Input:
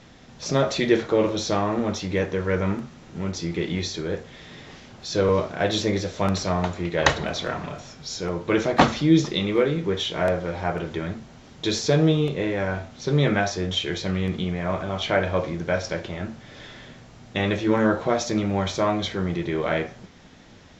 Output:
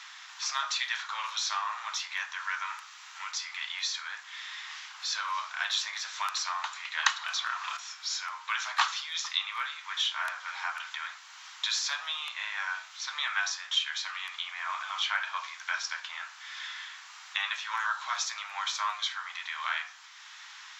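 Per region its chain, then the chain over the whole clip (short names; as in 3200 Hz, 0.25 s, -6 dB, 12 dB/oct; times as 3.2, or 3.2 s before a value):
7.08–7.77 bell 1200 Hz +3 dB 0.21 oct + three-band squash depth 100%
whole clip: steep high-pass 980 Hz 48 dB/oct; dynamic EQ 2100 Hz, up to -5 dB, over -44 dBFS, Q 4.1; three-band squash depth 40%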